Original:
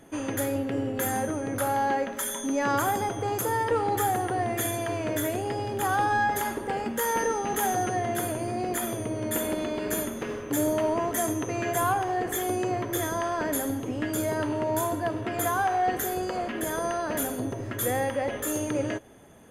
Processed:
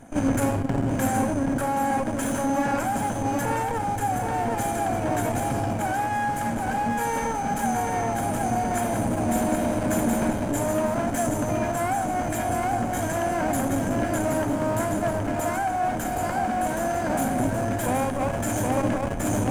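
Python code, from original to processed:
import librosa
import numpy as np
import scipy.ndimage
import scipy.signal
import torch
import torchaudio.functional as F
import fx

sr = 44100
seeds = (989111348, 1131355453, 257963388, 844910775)

p1 = fx.lower_of_two(x, sr, delay_ms=1.3)
p2 = fx.echo_feedback(p1, sr, ms=772, feedback_pct=40, wet_db=-4)
p3 = fx.schmitt(p2, sr, flips_db=-33.0)
p4 = p2 + F.gain(torch.from_numpy(p3), -8.0).numpy()
p5 = fx.high_shelf(p4, sr, hz=4800.0, db=-12.0)
p6 = fx.rider(p5, sr, range_db=10, speed_s=0.5)
p7 = fx.graphic_eq(p6, sr, hz=(250, 4000, 8000), db=(9, -7, 11))
y = fx.transformer_sat(p7, sr, knee_hz=160.0)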